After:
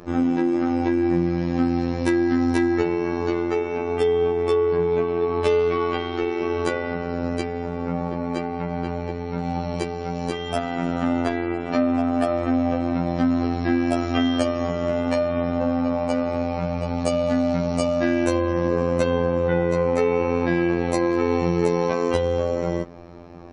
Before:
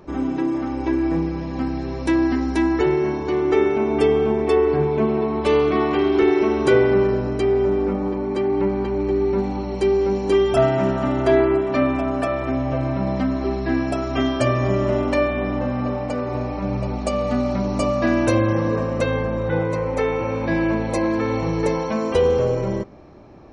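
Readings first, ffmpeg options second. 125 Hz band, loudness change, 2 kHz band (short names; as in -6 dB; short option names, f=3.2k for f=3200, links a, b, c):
-3.0 dB, -2.0 dB, -2.5 dB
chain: -af "acompressor=threshold=-21dB:ratio=6,afftfilt=real='hypot(re,im)*cos(PI*b)':imag='0':win_size=2048:overlap=0.75,volume=6.5dB"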